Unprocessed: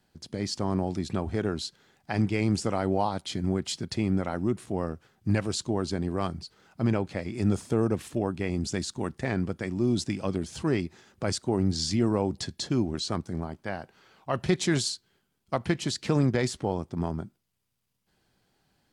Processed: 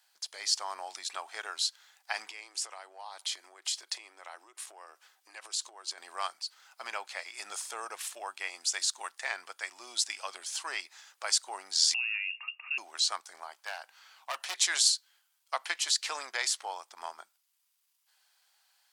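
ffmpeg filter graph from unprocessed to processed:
-filter_complex "[0:a]asettb=1/sr,asplit=3[a][b][c];[a]atrim=end=2.274[d];[b]atrim=start=2.27:end=5.98,asetpts=PTS-STARTPTS,afade=t=in:d=0.004:c=qsin,afade=t=out:st=3.706:d=0.004:c=qsin,lowshelf=f=240:t=q:w=3:g=-10,bandreject=f=1.4k:w=16,acompressor=threshold=-33dB:ratio=16:attack=3.2:release=140:knee=1:detection=peak[e];[c]atrim=start=5.976[f];[d][e]acrossfade=d=0.004:c1=hsin:c2=qsin[g];[g][f]acrossfade=d=0.004:c1=qsin:c2=hsin,asettb=1/sr,asplit=3[h][i][j];[h]atrim=end=11.944[k];[i]atrim=start=11.94:end=12.78,asetpts=PTS-STARTPTS,afade=t=in:d=0.004:c=qsin,afade=t=out:st=0.836:d=0.004:c=qsin,acompressor=threshold=-36dB:ratio=3:attack=3.2:release=140:knee=1:detection=peak,lowpass=f=2.5k:t=q:w=0.5098,lowpass=f=2.5k:t=q:w=0.6013,lowpass=f=2.5k:t=q:w=0.9,lowpass=f=2.5k:t=q:w=2.563,afreqshift=-2900[l];[j]atrim=start=12.776[m];[k][l]acrossfade=d=0.004:c1=hsin:c2=qsin[n];[n][m]acrossfade=d=0.004:c1=qsin:c2=hsin,asettb=1/sr,asplit=3[o][p][q];[o]atrim=end=13.664[r];[p]atrim=start=13.66:end=14.58,asetpts=PTS-STARTPTS,afade=t=in:d=0.004:c=qsin,afade=t=out:st=0.916:d=0.004:c=qsin,aeval=exprs='val(0)+0.00708*(sin(2*PI*50*n/s)+sin(2*PI*2*50*n/s)/2+sin(2*PI*3*50*n/s)/3+sin(2*PI*4*50*n/s)/4+sin(2*PI*5*50*n/s)/5)':c=same,asoftclip=type=hard:threshold=-26.5dB[s];[q]atrim=start=14.576[t];[r][s]acrossfade=d=0.004:c1=hsin:c2=qsin[u];[u][t]acrossfade=d=0.004:c1=qsin:c2=hsin,highpass=f=830:w=0.5412,highpass=f=830:w=1.3066,highshelf=f=3.4k:g=9"

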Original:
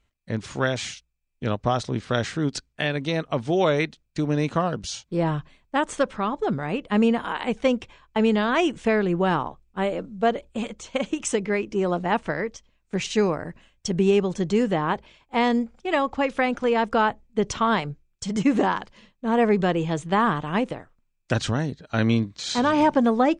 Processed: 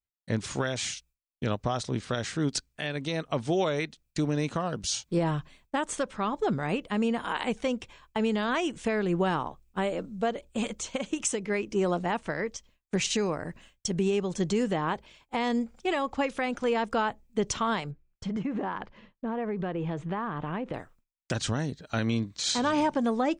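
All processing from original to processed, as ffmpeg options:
-filter_complex "[0:a]asettb=1/sr,asplit=3[a][b][c];[a]atrim=end=17.914[d];[b]atrim=start=17.91:end=20.74,asetpts=PTS-STARTPTS,afade=t=in:d=0.004:c=qsin,afade=t=out:st=2.826:d=0.004:c=qsin,lowpass=2k,acompressor=threshold=-28dB:ratio=8:attack=3.2:release=140:knee=1:detection=peak[e];[c]atrim=start=20.736[f];[d][e]acrossfade=d=0.004:c1=hsin:c2=qsin[g];[g][f]acrossfade=d=0.004:c1=qsin:c2=hsin,agate=range=-33dB:threshold=-53dB:ratio=3:detection=peak,highshelf=f=6.2k:g=10.5,alimiter=limit=-17.5dB:level=0:latency=1:release=450"

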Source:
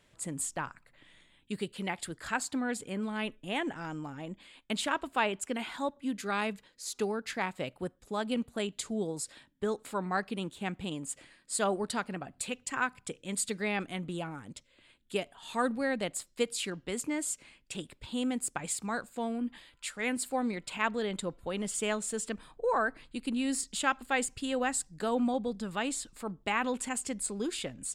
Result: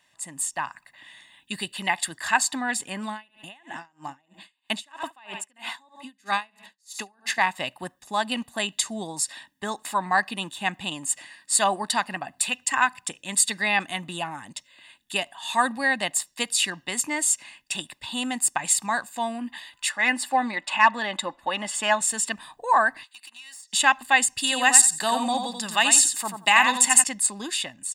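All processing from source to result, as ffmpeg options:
-filter_complex "[0:a]asettb=1/sr,asplit=3[a][b][c];[a]atrim=end=3.114[d];[b]atrim=start=3.11:end=7.38,asetpts=PTS-STARTPTS,afade=t=in:d=0.004:c=qsin,afade=t=out:st=4.266:d=0.004:c=qsin,aecho=1:1:71|142|213:0.211|0.0697|0.023,atrim=end_sample=188307,aeval=exprs='val(0)*pow(10,-36*(0.5-0.5*cos(2*PI*3.1*n/s))/20)':c=same[e];[c]atrim=start=7.376[f];[d][e]acrossfade=d=0.004:c1=hsin:c2=qsin[g];[g][f]acrossfade=d=0.004:c1=qsin:c2=hsin,asettb=1/sr,asplit=3[h][i][j];[h]atrim=end=19.894[k];[i]atrim=start=19.89:end=22.01,asetpts=PTS-STARTPTS,afade=t=in:d=0.004:c=qsin,afade=t=out:st=2.116:d=0.004:c=qsin,asplit=2[l][m];[m]highpass=f=720:p=1,volume=11dB,asoftclip=type=tanh:threshold=-14dB[n];[l][n]amix=inputs=2:normalize=0,lowpass=f=1.4k:p=1,volume=-6dB,aecho=1:1:3.5:0.44,atrim=end_sample=93492[o];[j]atrim=start=22.006[p];[k][o]acrossfade=d=0.004:c1=hsin:c2=qsin[q];[q][p]acrossfade=d=0.004:c1=qsin:c2=hsin,asettb=1/sr,asplit=3[r][s][t];[r]atrim=end=23.034[u];[s]atrim=start=23.03:end=23.73,asetpts=PTS-STARTPTS,afade=t=in:d=0.004:c=qsin,afade=t=out:st=0.696:d=0.004:c=qsin,highpass=1.3k,acompressor=threshold=-50dB:ratio=16:attack=3.2:release=140:knee=1:detection=peak,aeval=exprs='(tanh(200*val(0)+0.35)-tanh(0.35))/200':c=same[v];[t]atrim=start=23.726[w];[u][v]acrossfade=d=0.004:c1=hsin:c2=qsin[x];[x][w]acrossfade=d=0.004:c1=qsin:c2=hsin,asettb=1/sr,asplit=3[y][z][aa];[y]atrim=end=24.384[ab];[z]atrim=start=24.38:end=27.04,asetpts=PTS-STARTPTS,afade=t=in:d=0.004:c=qsin,afade=t=out:st=2.656:d=0.004:c=qsin,highpass=130,highshelf=f=3.4k:g=9.5,aecho=1:1:88|176|264:0.473|0.0804|0.0137,atrim=end_sample=117306[ac];[aa]atrim=start=27.036[ad];[ab][ac]acrossfade=d=0.004:c1=hsin:c2=qsin[ae];[ae][ad]acrossfade=d=0.004:c1=qsin:c2=hsin,highpass=f=880:p=1,aecho=1:1:1.1:0.73,dynaudnorm=f=260:g=5:m=8dB,volume=3dB"

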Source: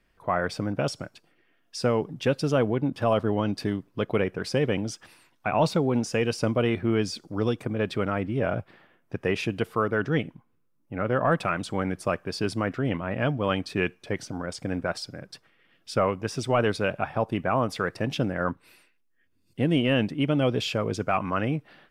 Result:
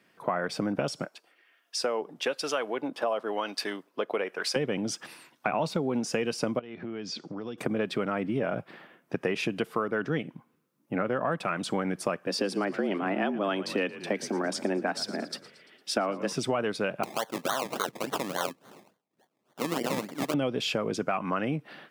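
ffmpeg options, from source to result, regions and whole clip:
-filter_complex "[0:a]asettb=1/sr,asplit=3[a][b][c];[a]atrim=end=1.044[d];[b]atrim=start=1.04:end=4.56,asetpts=PTS-STARTPTS,afade=t=in:d=0.004:c=qsin,afade=t=out:st=3.516:d=0.004:c=qsin,highpass=530,acrossover=split=1000[e][f];[e]aeval=exprs='val(0)*(1-0.5/2+0.5/2*cos(2*PI*1*n/s))':c=same[g];[f]aeval=exprs='val(0)*(1-0.5/2-0.5/2*cos(2*PI*1*n/s))':c=same[h];[g][h]amix=inputs=2:normalize=0[i];[c]atrim=start=4.556[j];[d][i]acrossfade=d=0.004:c1=hsin:c2=qsin[k];[k][j]acrossfade=d=0.004:c1=qsin:c2=hsin,asettb=1/sr,asplit=3[l][m][n];[l]atrim=end=6.594[o];[m]atrim=start=6.59:end=7.58,asetpts=PTS-STARTPTS,afade=t=in:d=0.004:c=qsin,afade=t=out:st=0.986:d=0.004:c=qsin,lowpass=f=6k:w=0.5412,lowpass=f=6k:w=1.3066,acompressor=threshold=-38dB:ratio=10:attack=3.2:release=140:knee=1:detection=peak[p];[n]atrim=start=7.576[q];[o][p]acrossfade=d=0.004:c1=hsin:c2=qsin[r];[r][q]acrossfade=d=0.004:c1=qsin:c2=hsin,asettb=1/sr,asplit=3[s][t][u];[s]atrim=end=12.274[v];[t]atrim=start=12.27:end=16.33,asetpts=PTS-STARTPTS,afade=t=in:d=0.004:c=qsin,afade=t=out:st=4.056:d=0.004:c=qsin,highpass=43,afreqshift=95,asplit=6[w][x][y][z][aa][ab];[x]adelay=114,afreqshift=-55,volume=-18.5dB[ac];[y]adelay=228,afreqshift=-110,volume=-22.9dB[ad];[z]adelay=342,afreqshift=-165,volume=-27.4dB[ae];[aa]adelay=456,afreqshift=-220,volume=-31.8dB[af];[ab]adelay=570,afreqshift=-275,volume=-36.2dB[ag];[w][ac][ad][ae][af][ag]amix=inputs=6:normalize=0,atrim=end_sample=179046[ah];[u]atrim=start=16.326[ai];[v][ah]acrossfade=d=0.004:c1=hsin:c2=qsin[aj];[aj][ai]acrossfade=d=0.004:c1=qsin:c2=hsin,asettb=1/sr,asplit=3[ak][al][am];[ak]atrim=end=17.034[an];[al]atrim=start=17.03:end=20.34,asetpts=PTS-STARTPTS,afade=t=in:d=0.004:c=qsin,afade=t=out:st=3.306:d=0.004:c=qsin,highpass=f=1.2k:p=1,acrusher=samples=24:mix=1:aa=0.000001:lfo=1:lforange=14.4:lforate=3.5[ao];[am]atrim=start=20.336[ap];[an][ao]acrossfade=d=0.004:c1=hsin:c2=qsin[aq];[aq][ap]acrossfade=d=0.004:c1=qsin:c2=hsin,highpass=f=150:w=0.5412,highpass=f=150:w=1.3066,acompressor=threshold=-32dB:ratio=6,volume=6.5dB"

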